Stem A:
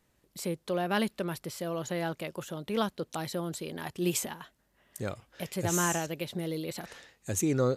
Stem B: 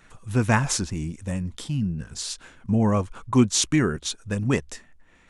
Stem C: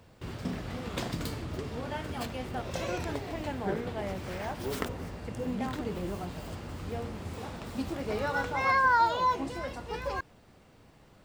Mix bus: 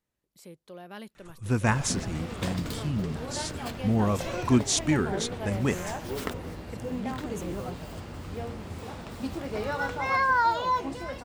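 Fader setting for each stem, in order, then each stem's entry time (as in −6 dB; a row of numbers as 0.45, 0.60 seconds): −14.0, −4.0, +0.5 decibels; 0.00, 1.15, 1.45 seconds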